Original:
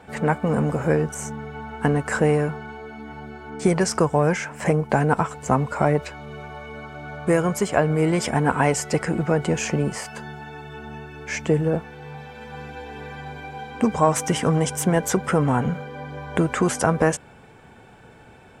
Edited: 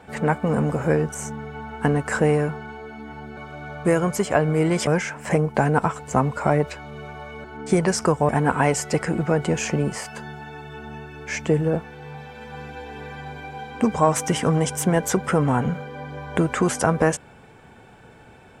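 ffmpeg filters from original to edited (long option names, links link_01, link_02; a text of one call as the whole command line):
ffmpeg -i in.wav -filter_complex "[0:a]asplit=5[link_01][link_02][link_03][link_04][link_05];[link_01]atrim=end=3.372[link_06];[link_02]atrim=start=6.788:end=8.292[link_07];[link_03]atrim=start=4.218:end=6.792[link_08];[link_04]atrim=start=3.368:end=4.222[link_09];[link_05]atrim=start=8.288[link_10];[link_06][link_07]acrossfade=duration=0.004:curve1=hsin:curve2=hsin[link_11];[link_11][link_08]acrossfade=duration=0.004:curve1=hsin:curve2=hsin[link_12];[link_12][link_09]acrossfade=duration=0.004:curve1=hsin:curve2=hsin[link_13];[link_13][link_10]acrossfade=duration=0.004:curve1=hsin:curve2=hsin" out.wav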